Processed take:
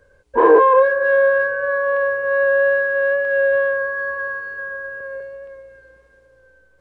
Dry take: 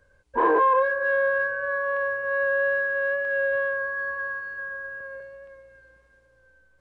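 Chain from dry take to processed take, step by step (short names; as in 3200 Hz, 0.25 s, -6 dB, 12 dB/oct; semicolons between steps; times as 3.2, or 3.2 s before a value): bell 450 Hz +7.5 dB 0.77 oct; gain +4.5 dB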